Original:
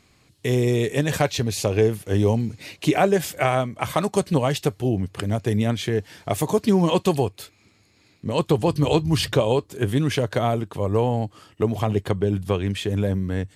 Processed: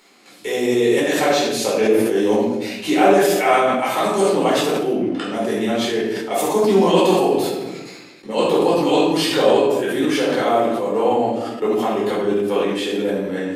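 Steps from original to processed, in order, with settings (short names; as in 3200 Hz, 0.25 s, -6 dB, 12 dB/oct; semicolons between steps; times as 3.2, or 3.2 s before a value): 4.91–5.32 LPF 3000 Hz -> 6700 Hz 12 dB/oct; gate with hold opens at -46 dBFS; HPF 250 Hz 24 dB/oct; upward compressor, threshold -36 dBFS; shoebox room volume 370 m³, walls mixed, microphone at 4.3 m; sustainer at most 35 dB/s; gain -5.5 dB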